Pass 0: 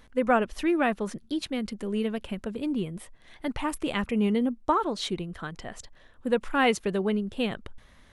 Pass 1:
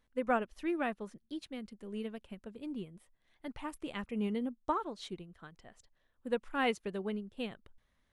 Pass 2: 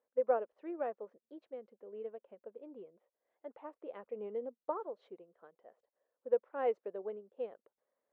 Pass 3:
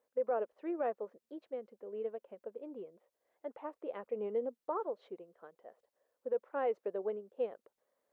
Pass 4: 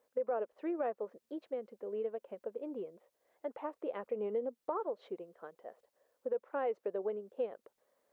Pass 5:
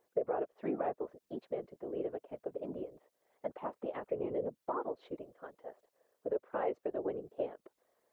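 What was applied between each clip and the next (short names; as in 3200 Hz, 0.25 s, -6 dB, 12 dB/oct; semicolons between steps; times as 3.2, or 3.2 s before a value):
upward expander 1.5:1, over -44 dBFS; gain -7.5 dB
ladder band-pass 570 Hz, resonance 60%; gain +7 dB
limiter -30 dBFS, peak gain reduction 11 dB; gain +4.5 dB
compressor 2:1, threshold -41 dBFS, peak gain reduction 7 dB; gain +5 dB
whisperiser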